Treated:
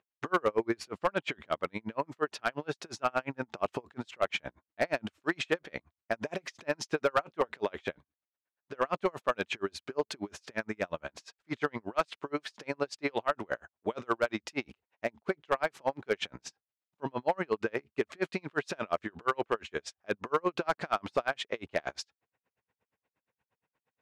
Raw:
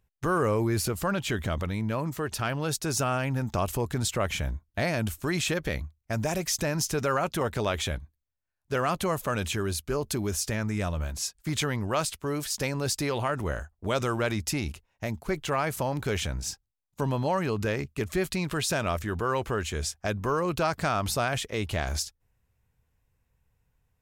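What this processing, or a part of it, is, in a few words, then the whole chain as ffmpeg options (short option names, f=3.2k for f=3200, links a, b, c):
helicopter radio: -af "highpass=320,lowpass=2.9k,aeval=exprs='val(0)*pow(10,-39*(0.5-0.5*cos(2*PI*8.5*n/s))/20)':c=same,asoftclip=type=hard:threshold=-23.5dB,volume=6dB"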